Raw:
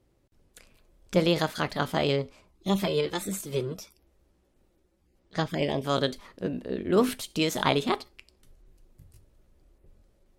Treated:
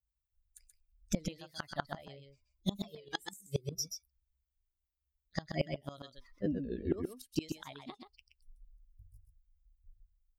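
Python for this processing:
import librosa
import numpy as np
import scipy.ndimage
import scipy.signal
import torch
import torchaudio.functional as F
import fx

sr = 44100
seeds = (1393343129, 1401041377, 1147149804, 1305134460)

y = fx.bin_expand(x, sr, power=2.0)
y = fx.curve_eq(y, sr, hz=(620.0, 1400.0, 8300.0), db=(0, -2, 6))
y = fx.gate_flip(y, sr, shuts_db=-26.0, range_db=-29)
y = y + 10.0 ** (-6.5 / 20.0) * np.pad(y, (int(130 * sr / 1000.0), 0))[:len(y)]
y = fx.record_warp(y, sr, rpm=33.33, depth_cents=100.0)
y = y * librosa.db_to_amplitude(7.5)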